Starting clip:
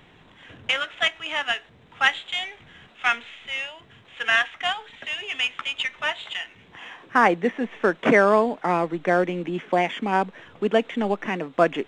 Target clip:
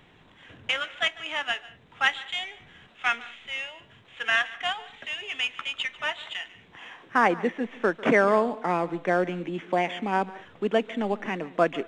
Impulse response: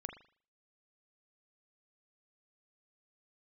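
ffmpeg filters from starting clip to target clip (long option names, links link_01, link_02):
-filter_complex "[0:a]asplit=2[link_01][link_02];[1:a]atrim=start_sample=2205,afade=type=out:start_time=0.14:duration=0.01,atrim=end_sample=6615,adelay=146[link_03];[link_02][link_03]afir=irnorm=-1:irlink=0,volume=-15.5dB[link_04];[link_01][link_04]amix=inputs=2:normalize=0,volume=-3.5dB"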